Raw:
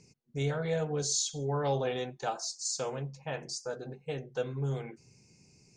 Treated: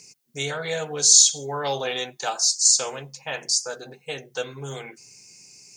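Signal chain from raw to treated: tilt +4 dB/oct; gain +7 dB

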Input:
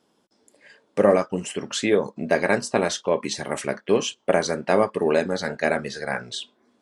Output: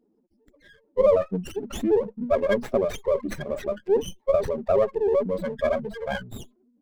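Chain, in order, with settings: spectral contrast raised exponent 3.6; running maximum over 9 samples

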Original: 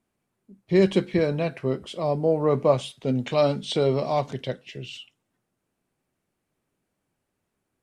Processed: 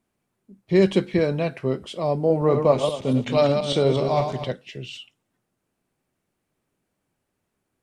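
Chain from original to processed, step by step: 2.18–4.52 regenerating reverse delay 0.119 s, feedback 43%, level -6 dB; gain +1.5 dB

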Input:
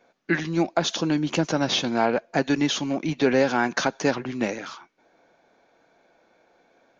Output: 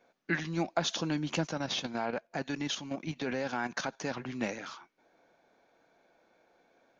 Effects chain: dynamic EQ 370 Hz, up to -5 dB, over -35 dBFS, Q 1.4; 1.47–4.17 level quantiser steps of 9 dB; gain -6 dB

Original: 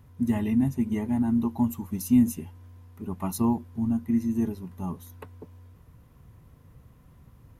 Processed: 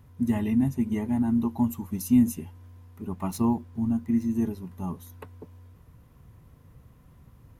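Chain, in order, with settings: 3.12–4.34 median filter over 3 samples

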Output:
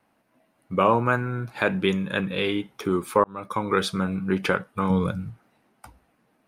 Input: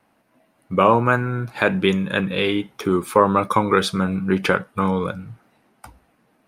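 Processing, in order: 3.24–3.8 fade in; 4.9–5.3 tone controls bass +9 dB, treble +5 dB; gain -4.5 dB

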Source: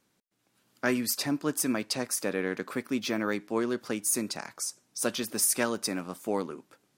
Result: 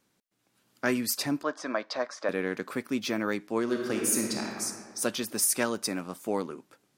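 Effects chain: 1.43–2.29 speaker cabinet 390–4800 Hz, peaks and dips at 410 Hz -4 dB, 610 Hz +10 dB, 1100 Hz +7 dB, 1600 Hz +4 dB, 2700 Hz -8 dB, 4500 Hz -3 dB; 3.63–4.64 reverb throw, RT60 1.8 s, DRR 0 dB

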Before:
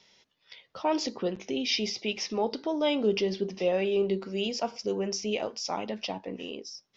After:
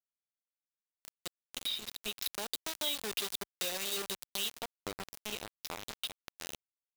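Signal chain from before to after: opening faded in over 2.27 s; synth low-pass 3800 Hz, resonance Q 14; bell 99 Hz +8.5 dB 0.37 oct; bit-crush 4-bit; compressor 5:1, threshold -30 dBFS, peak gain reduction 16 dB; 2.22–4.5 tilt +2 dB/oct; gain -5.5 dB

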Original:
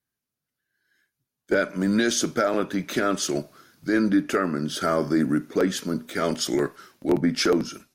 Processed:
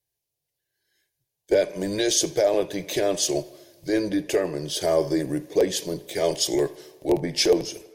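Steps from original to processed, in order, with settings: fixed phaser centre 560 Hz, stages 4; tape echo 81 ms, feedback 72%, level -20.5 dB, low-pass 4600 Hz; gain +4.5 dB

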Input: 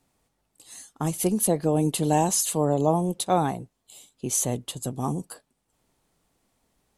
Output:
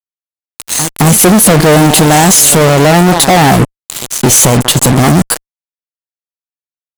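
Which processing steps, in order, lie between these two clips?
pre-echo 0.217 s -21.5 dB; fuzz box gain 47 dB, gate -42 dBFS; maximiser +14 dB; gain -1 dB

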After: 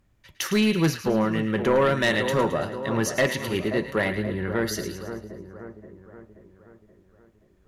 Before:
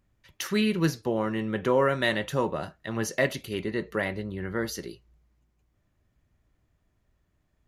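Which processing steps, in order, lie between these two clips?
split-band echo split 1400 Hz, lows 0.528 s, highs 0.109 s, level -10 dB; sine folder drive 5 dB, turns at -10.5 dBFS; gain -4 dB

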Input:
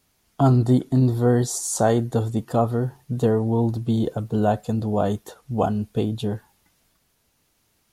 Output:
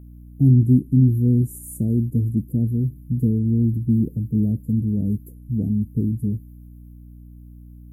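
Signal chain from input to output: inverse Chebyshev band-stop 980–4200 Hz, stop band 70 dB; hum 60 Hz, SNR 21 dB; gain +4 dB

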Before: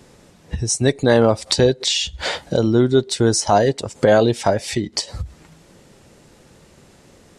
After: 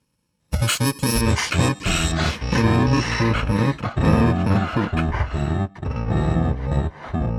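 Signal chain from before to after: FFT order left unsorted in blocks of 64 samples; LPF 9200 Hz 12 dB/oct, from 1.21 s 2600 Hz, from 2.76 s 1600 Hz; gate -43 dBFS, range -25 dB; notch comb 390 Hz; limiter -16.5 dBFS, peak gain reduction 9.5 dB; echoes that change speed 0.403 s, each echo -6 st, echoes 2; gain +6 dB

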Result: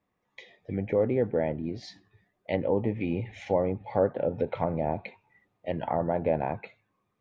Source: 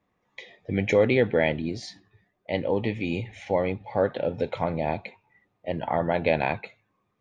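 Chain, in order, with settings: treble ducked by the level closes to 1000 Hz, closed at -22 dBFS; vocal rider 2 s; gain -2 dB

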